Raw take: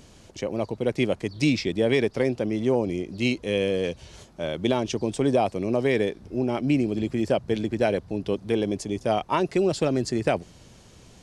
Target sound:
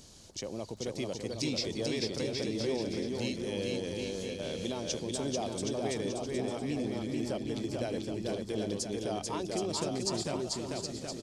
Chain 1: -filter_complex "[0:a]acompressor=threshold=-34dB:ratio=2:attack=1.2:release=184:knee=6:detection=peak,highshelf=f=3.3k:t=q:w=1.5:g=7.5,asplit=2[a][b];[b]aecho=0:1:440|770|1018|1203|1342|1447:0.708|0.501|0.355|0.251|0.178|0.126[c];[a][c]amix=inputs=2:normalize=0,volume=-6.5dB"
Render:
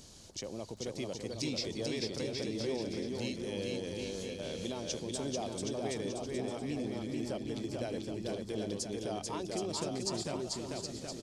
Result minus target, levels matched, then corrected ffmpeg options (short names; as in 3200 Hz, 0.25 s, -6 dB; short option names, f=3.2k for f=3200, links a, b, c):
compressor: peak gain reduction +3 dB
-filter_complex "[0:a]acompressor=threshold=-28dB:ratio=2:attack=1.2:release=184:knee=6:detection=peak,highshelf=f=3.3k:t=q:w=1.5:g=7.5,asplit=2[a][b];[b]aecho=0:1:440|770|1018|1203|1342|1447:0.708|0.501|0.355|0.251|0.178|0.126[c];[a][c]amix=inputs=2:normalize=0,volume=-6.5dB"